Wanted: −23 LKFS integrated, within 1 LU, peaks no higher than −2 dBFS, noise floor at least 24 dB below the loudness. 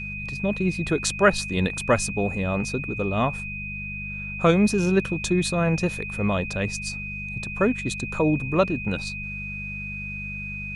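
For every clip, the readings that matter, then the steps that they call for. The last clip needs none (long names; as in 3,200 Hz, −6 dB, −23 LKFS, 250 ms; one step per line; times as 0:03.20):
mains hum 50 Hz; hum harmonics up to 200 Hz; level of the hum −34 dBFS; interfering tone 2,500 Hz; level of the tone −32 dBFS; integrated loudness −25.0 LKFS; sample peak −4.5 dBFS; target loudness −23.0 LKFS
→ hum removal 50 Hz, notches 4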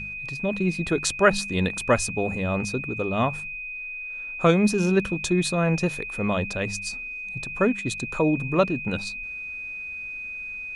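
mains hum none found; interfering tone 2,500 Hz; level of the tone −32 dBFS
→ notch filter 2,500 Hz, Q 30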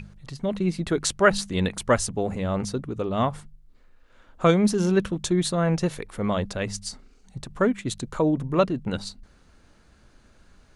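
interfering tone none found; integrated loudness −25.0 LKFS; sample peak −5.0 dBFS; target loudness −23.0 LKFS
→ level +2 dB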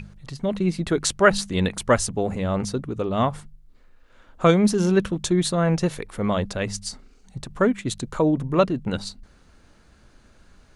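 integrated loudness −23.0 LKFS; sample peak −3.0 dBFS; background noise floor −54 dBFS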